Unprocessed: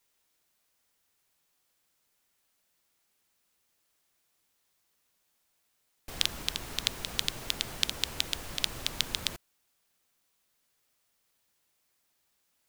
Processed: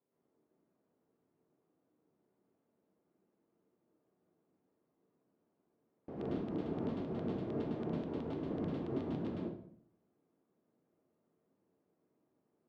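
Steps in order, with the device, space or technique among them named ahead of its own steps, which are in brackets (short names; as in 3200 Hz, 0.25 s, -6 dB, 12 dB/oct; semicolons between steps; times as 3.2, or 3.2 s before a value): television next door (compressor, threshold -30 dBFS, peak gain reduction 10 dB; LPF 340 Hz 12 dB/oct; reverb RT60 0.60 s, pre-delay 99 ms, DRR -6 dB); HPF 240 Hz 12 dB/oct; gain +9.5 dB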